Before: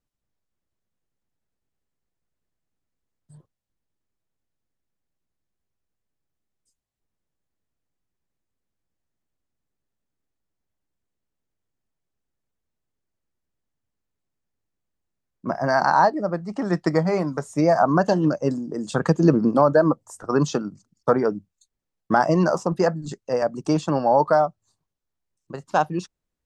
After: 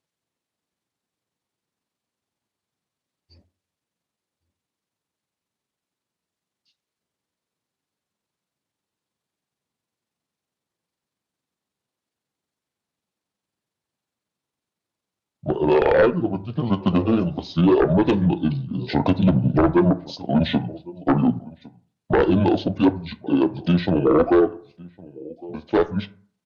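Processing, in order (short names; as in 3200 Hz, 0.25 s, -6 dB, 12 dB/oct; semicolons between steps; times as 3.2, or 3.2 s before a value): delay-line pitch shifter -10 st; HPF 160 Hz 12 dB/oct; outdoor echo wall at 190 m, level -24 dB; sine folder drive 9 dB, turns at -4.5 dBFS; reverb RT60 0.50 s, pre-delay 17 ms, DRR 14.5 dB; gain -6.5 dB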